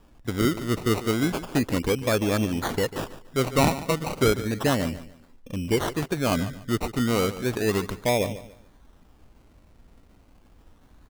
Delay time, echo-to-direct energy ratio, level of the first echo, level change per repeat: 145 ms, -14.0 dB, -14.5 dB, -11.0 dB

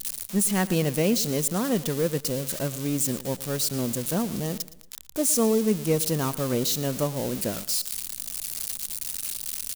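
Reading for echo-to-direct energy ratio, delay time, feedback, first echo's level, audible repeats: -17.0 dB, 115 ms, 39%, -17.5 dB, 3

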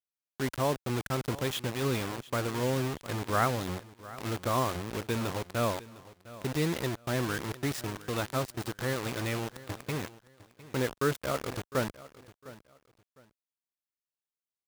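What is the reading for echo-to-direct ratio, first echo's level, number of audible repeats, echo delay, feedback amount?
-17.5 dB, -18.0 dB, 2, 706 ms, 25%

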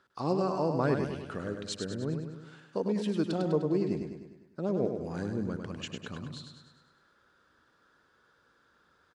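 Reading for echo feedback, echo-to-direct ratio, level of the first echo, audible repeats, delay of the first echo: 54%, -4.5 dB, -6.0 dB, 6, 101 ms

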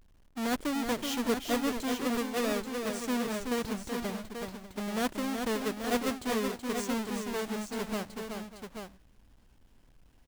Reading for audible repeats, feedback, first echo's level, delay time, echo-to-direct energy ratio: 3, no regular repeats, -5.5 dB, 376 ms, -3.0 dB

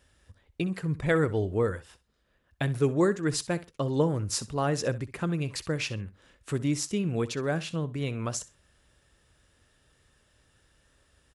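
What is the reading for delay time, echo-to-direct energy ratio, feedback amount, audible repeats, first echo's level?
64 ms, -17.0 dB, 19%, 2, -17.0 dB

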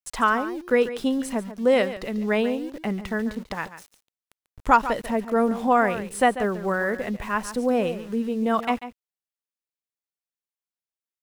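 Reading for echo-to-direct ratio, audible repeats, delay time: -13.0 dB, 1, 142 ms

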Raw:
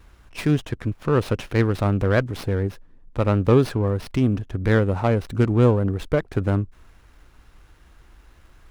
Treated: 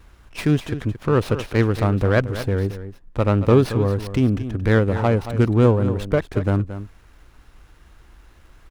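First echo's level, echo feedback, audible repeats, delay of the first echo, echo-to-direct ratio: -12.0 dB, no regular repeats, 1, 225 ms, -12.0 dB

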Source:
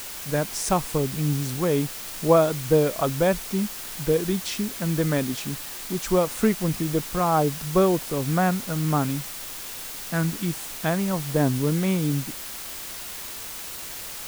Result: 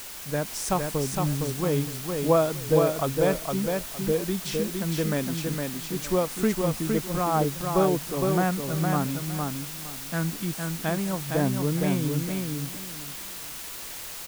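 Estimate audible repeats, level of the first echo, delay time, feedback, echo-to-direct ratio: 3, -4.0 dB, 461 ms, 23%, -4.0 dB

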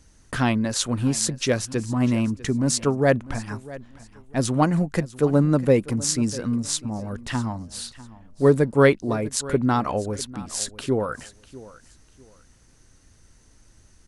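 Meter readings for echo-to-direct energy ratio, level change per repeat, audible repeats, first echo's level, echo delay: -18.0 dB, -11.5 dB, 2, -18.5 dB, 648 ms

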